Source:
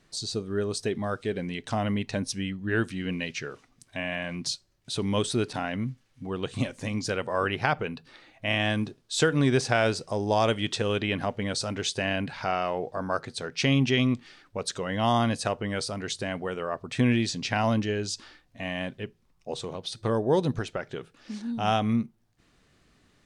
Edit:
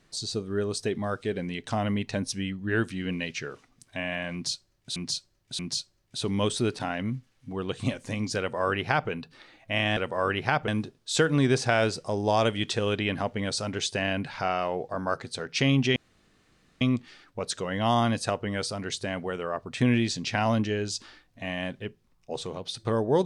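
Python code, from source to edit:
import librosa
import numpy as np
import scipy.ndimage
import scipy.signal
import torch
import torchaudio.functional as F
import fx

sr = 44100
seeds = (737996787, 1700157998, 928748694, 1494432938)

y = fx.edit(x, sr, fx.repeat(start_s=4.33, length_s=0.63, count=3),
    fx.duplicate(start_s=7.13, length_s=0.71, to_s=8.71),
    fx.insert_room_tone(at_s=13.99, length_s=0.85), tone=tone)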